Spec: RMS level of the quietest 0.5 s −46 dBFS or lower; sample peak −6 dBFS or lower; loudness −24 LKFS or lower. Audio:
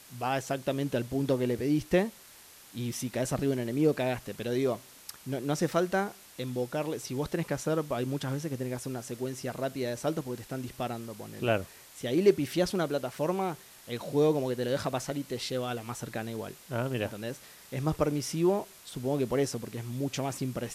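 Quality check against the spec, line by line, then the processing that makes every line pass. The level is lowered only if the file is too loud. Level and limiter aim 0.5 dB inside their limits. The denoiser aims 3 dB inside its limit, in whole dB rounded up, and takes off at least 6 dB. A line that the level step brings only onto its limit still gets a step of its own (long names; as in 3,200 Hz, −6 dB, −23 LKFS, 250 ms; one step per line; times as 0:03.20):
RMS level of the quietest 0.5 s −53 dBFS: in spec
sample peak −10.5 dBFS: in spec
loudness −31.5 LKFS: in spec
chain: no processing needed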